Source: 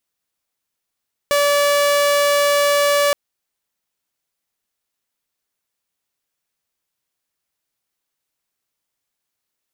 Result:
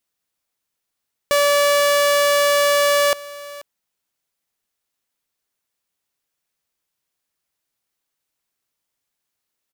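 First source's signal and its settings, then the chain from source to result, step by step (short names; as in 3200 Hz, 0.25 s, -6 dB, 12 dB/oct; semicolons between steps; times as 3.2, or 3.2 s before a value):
tone saw 576 Hz -11 dBFS 1.82 s
echo 0.485 s -19 dB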